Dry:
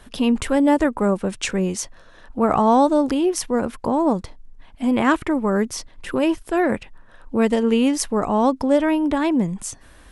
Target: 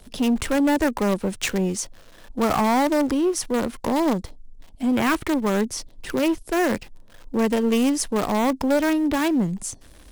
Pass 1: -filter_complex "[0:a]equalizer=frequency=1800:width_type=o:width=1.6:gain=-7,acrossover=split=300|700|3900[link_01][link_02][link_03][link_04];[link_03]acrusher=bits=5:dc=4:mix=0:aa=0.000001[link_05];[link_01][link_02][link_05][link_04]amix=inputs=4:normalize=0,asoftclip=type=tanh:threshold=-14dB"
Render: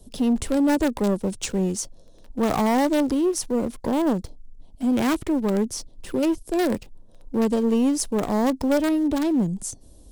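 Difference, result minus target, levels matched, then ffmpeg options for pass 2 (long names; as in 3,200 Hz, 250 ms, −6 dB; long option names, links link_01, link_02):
2,000 Hz band −5.5 dB
-filter_complex "[0:a]equalizer=frequency=1800:width_type=o:width=1.6:gain=2.5,acrossover=split=300|700|3900[link_01][link_02][link_03][link_04];[link_03]acrusher=bits=5:dc=4:mix=0:aa=0.000001[link_05];[link_01][link_02][link_05][link_04]amix=inputs=4:normalize=0,asoftclip=type=tanh:threshold=-14dB"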